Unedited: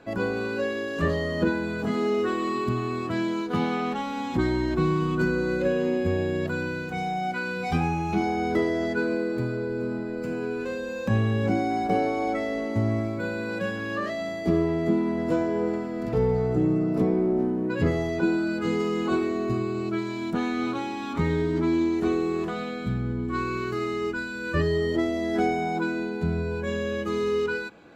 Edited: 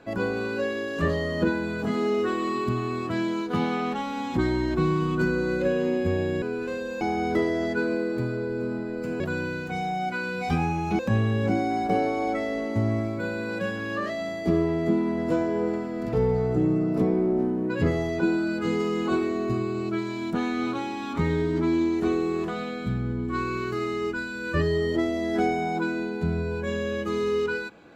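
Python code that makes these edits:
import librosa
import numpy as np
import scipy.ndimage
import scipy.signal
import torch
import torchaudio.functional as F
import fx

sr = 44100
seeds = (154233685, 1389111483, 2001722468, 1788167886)

y = fx.edit(x, sr, fx.swap(start_s=6.42, length_s=1.79, other_s=10.4, other_length_s=0.59), tone=tone)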